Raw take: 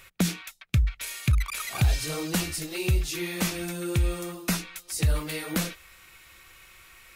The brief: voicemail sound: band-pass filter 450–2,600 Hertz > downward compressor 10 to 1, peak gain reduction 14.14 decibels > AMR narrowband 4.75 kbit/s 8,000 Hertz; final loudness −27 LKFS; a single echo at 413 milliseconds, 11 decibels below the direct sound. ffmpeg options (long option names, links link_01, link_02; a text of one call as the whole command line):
ffmpeg -i in.wav -af "highpass=450,lowpass=2600,aecho=1:1:413:0.282,acompressor=threshold=-42dB:ratio=10,volume=23.5dB" -ar 8000 -c:a libopencore_amrnb -b:a 4750 out.amr